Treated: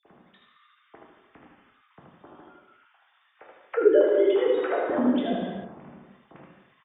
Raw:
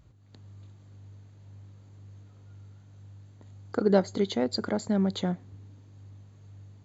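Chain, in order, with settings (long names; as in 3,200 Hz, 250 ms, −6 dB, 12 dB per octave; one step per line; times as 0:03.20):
three sine waves on the formant tracks
on a send: single-tap delay 78 ms −4 dB
on the sum: reverb whose tail is shaped and stops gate 390 ms falling, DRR −3.5 dB
multiband upward and downward compressor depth 40%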